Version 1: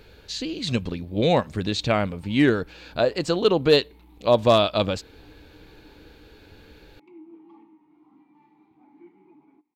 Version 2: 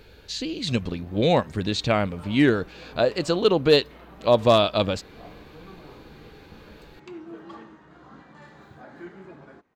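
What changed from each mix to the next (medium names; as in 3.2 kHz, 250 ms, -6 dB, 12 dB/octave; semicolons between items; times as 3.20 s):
background: remove vowel filter u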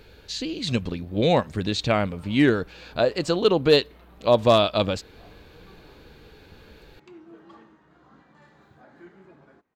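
background -7.0 dB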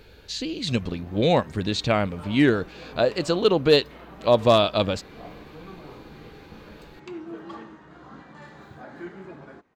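background +10.0 dB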